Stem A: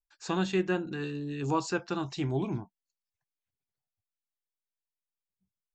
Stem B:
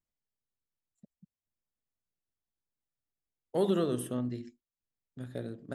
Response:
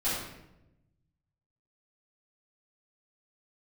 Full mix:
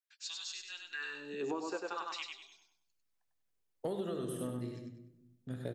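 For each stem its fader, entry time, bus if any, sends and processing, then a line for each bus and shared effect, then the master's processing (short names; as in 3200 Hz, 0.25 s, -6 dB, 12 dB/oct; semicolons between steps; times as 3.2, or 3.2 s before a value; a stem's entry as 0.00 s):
-3.0 dB, 0.00 s, no send, echo send -4.5 dB, LFO high-pass sine 0.49 Hz 370–5000 Hz
-0.5 dB, 0.30 s, send -15.5 dB, echo send -5.5 dB, dry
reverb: on, RT60 0.90 s, pre-delay 4 ms
echo: feedback echo 98 ms, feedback 33%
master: compressor 12:1, threshold -34 dBFS, peak gain reduction 13.5 dB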